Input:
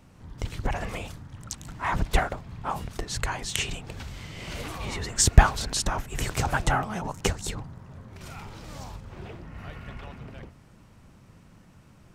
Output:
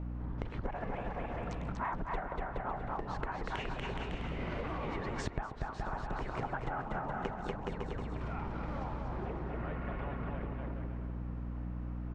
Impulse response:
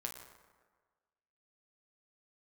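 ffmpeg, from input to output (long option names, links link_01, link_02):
-af "lowpass=1400,equalizer=frequency=71:width=0.91:gain=-13.5,aecho=1:1:240|420|555|656.2|732.2:0.631|0.398|0.251|0.158|0.1,aeval=exprs='val(0)+0.00708*(sin(2*PI*60*n/s)+sin(2*PI*2*60*n/s)/2+sin(2*PI*3*60*n/s)/3+sin(2*PI*4*60*n/s)/4+sin(2*PI*5*60*n/s)/5)':channel_layout=same,acompressor=threshold=-39dB:ratio=12,volume=5.5dB"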